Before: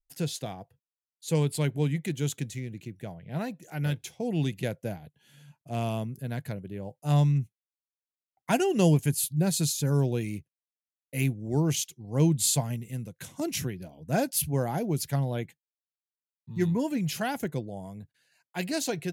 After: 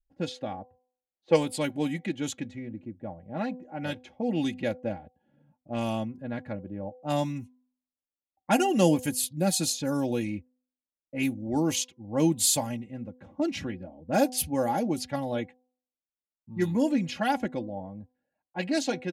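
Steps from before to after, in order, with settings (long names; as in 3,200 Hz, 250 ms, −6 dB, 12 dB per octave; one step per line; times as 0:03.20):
parametric band 730 Hz +6 dB 0.37 octaves
low-pass that shuts in the quiet parts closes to 460 Hz, open at −22 dBFS
comb filter 3.6 ms, depth 79%
hum removal 252.2 Hz, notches 4
gain on a spectral selection 0:01.15–0:01.36, 330–6,400 Hz +8 dB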